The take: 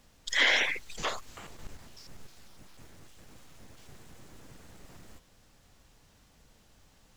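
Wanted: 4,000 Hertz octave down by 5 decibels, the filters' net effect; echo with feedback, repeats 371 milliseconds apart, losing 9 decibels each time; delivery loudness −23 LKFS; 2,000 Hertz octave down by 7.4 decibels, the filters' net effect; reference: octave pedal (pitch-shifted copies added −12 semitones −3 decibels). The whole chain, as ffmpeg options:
ffmpeg -i in.wav -filter_complex "[0:a]equalizer=frequency=2000:width_type=o:gain=-7.5,equalizer=frequency=4000:width_type=o:gain=-3.5,aecho=1:1:371|742|1113|1484:0.355|0.124|0.0435|0.0152,asplit=2[link_01][link_02];[link_02]asetrate=22050,aresample=44100,atempo=2,volume=-3dB[link_03];[link_01][link_03]amix=inputs=2:normalize=0,volume=10.5dB" out.wav

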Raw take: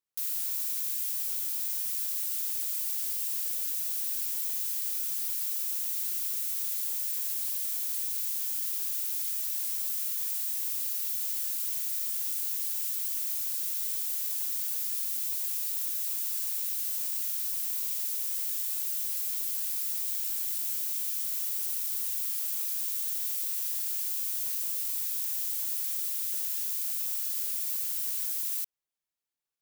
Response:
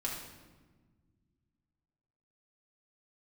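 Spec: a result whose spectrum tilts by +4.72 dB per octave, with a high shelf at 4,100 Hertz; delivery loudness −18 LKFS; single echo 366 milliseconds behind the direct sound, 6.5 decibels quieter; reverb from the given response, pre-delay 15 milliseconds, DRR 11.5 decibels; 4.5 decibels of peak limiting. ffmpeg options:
-filter_complex "[0:a]highshelf=frequency=4100:gain=-8,alimiter=level_in=6.5dB:limit=-24dB:level=0:latency=1,volume=-6.5dB,aecho=1:1:366:0.473,asplit=2[link_01][link_02];[1:a]atrim=start_sample=2205,adelay=15[link_03];[link_02][link_03]afir=irnorm=-1:irlink=0,volume=-14dB[link_04];[link_01][link_04]amix=inputs=2:normalize=0,volume=18.5dB"

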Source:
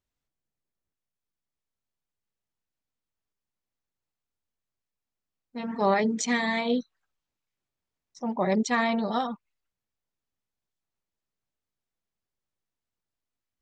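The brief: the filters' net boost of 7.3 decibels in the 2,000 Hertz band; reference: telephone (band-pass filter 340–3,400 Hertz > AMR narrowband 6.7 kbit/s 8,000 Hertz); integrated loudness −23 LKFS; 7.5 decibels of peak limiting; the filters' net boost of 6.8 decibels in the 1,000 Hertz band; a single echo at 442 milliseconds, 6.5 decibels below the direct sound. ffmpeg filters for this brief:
ffmpeg -i in.wav -af "equalizer=frequency=1000:width_type=o:gain=7.5,equalizer=frequency=2000:width_type=o:gain=6.5,alimiter=limit=-14.5dB:level=0:latency=1,highpass=340,lowpass=3400,aecho=1:1:442:0.473,volume=4.5dB" -ar 8000 -c:a libopencore_amrnb -b:a 6700 out.amr

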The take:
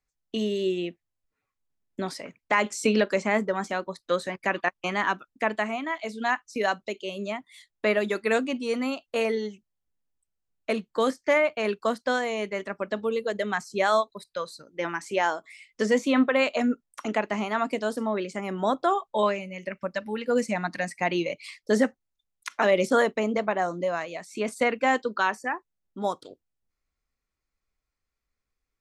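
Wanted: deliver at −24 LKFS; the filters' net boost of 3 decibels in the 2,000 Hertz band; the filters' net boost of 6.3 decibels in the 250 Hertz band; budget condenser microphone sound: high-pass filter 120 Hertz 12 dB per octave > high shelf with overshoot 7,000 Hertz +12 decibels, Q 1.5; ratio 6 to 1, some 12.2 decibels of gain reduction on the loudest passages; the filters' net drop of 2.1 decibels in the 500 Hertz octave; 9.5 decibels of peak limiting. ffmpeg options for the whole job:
ffmpeg -i in.wav -af "equalizer=frequency=250:width_type=o:gain=8.5,equalizer=frequency=500:width_type=o:gain=-5,equalizer=frequency=2000:width_type=o:gain=4.5,acompressor=threshold=-23dB:ratio=6,alimiter=limit=-19dB:level=0:latency=1,highpass=120,highshelf=frequency=7000:width_type=q:width=1.5:gain=12,volume=7dB" out.wav

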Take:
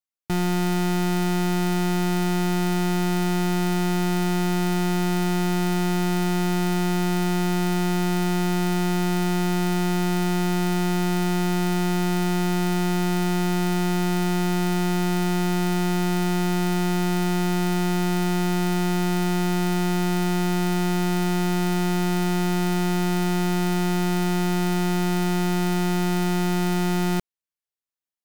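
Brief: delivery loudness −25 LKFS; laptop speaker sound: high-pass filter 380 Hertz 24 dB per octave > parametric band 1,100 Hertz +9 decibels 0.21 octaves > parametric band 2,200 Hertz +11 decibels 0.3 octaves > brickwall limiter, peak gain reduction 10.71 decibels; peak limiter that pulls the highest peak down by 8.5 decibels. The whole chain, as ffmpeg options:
ffmpeg -i in.wav -af "alimiter=level_in=6.5dB:limit=-24dB:level=0:latency=1,volume=-6.5dB,highpass=frequency=380:width=0.5412,highpass=frequency=380:width=1.3066,equalizer=frequency=1100:width_type=o:width=0.21:gain=9,equalizer=frequency=2200:width_type=o:width=0.3:gain=11,volume=21dB,alimiter=limit=-14.5dB:level=0:latency=1" out.wav

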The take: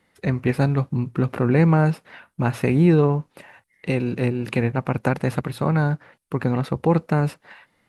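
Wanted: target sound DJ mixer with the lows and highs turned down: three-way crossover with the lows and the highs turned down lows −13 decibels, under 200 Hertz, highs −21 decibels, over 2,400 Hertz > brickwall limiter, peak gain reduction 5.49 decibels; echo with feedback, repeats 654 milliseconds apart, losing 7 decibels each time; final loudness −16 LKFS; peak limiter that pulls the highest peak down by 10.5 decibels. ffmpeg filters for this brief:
ffmpeg -i in.wav -filter_complex "[0:a]alimiter=limit=-15.5dB:level=0:latency=1,acrossover=split=200 2400:gain=0.224 1 0.0891[link_01][link_02][link_03];[link_01][link_02][link_03]amix=inputs=3:normalize=0,aecho=1:1:654|1308|1962|2616|3270:0.447|0.201|0.0905|0.0407|0.0183,volume=16dB,alimiter=limit=-4.5dB:level=0:latency=1" out.wav

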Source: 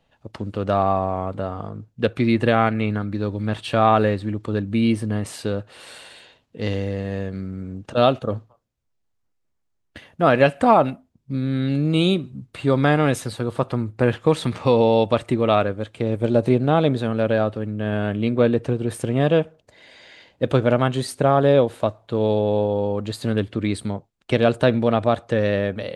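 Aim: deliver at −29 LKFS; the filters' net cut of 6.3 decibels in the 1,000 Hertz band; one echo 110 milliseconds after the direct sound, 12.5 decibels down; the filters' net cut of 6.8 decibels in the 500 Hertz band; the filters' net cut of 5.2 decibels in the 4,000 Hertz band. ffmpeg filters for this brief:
ffmpeg -i in.wav -af "equalizer=frequency=500:width_type=o:gain=-6.5,equalizer=frequency=1000:width_type=o:gain=-6,equalizer=frequency=4000:width_type=o:gain=-6,aecho=1:1:110:0.237,volume=-4.5dB" out.wav

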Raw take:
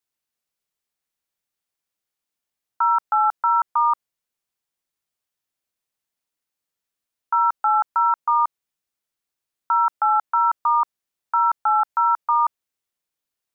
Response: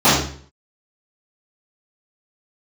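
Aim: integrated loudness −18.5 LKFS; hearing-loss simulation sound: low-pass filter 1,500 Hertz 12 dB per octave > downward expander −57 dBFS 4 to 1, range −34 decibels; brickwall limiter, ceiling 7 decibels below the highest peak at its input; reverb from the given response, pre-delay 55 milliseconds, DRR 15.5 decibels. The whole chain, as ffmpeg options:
-filter_complex "[0:a]alimiter=limit=-18.5dB:level=0:latency=1,asplit=2[link_01][link_02];[1:a]atrim=start_sample=2205,adelay=55[link_03];[link_02][link_03]afir=irnorm=-1:irlink=0,volume=-42.5dB[link_04];[link_01][link_04]amix=inputs=2:normalize=0,lowpass=1500,agate=range=-34dB:threshold=-57dB:ratio=4,volume=10dB"

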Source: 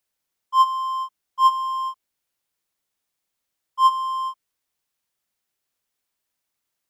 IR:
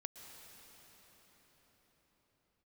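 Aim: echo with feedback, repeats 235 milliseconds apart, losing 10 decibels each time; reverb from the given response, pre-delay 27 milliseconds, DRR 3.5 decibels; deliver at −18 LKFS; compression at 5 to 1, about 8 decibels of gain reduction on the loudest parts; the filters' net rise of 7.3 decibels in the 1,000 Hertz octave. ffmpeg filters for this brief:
-filter_complex "[0:a]equalizer=frequency=1000:width_type=o:gain=7.5,acompressor=threshold=-13dB:ratio=5,aecho=1:1:235|470|705|940:0.316|0.101|0.0324|0.0104,asplit=2[link_01][link_02];[1:a]atrim=start_sample=2205,adelay=27[link_03];[link_02][link_03]afir=irnorm=-1:irlink=0,volume=0dB[link_04];[link_01][link_04]amix=inputs=2:normalize=0,volume=3dB"

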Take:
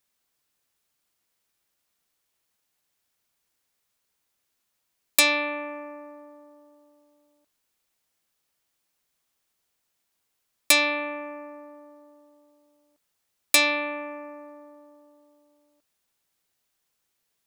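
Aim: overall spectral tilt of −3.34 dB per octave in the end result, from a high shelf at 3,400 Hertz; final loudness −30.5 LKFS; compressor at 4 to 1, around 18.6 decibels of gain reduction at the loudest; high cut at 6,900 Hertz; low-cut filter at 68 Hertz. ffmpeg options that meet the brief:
ffmpeg -i in.wav -af "highpass=68,lowpass=6900,highshelf=frequency=3400:gain=8,acompressor=threshold=-35dB:ratio=4,volume=7.5dB" out.wav

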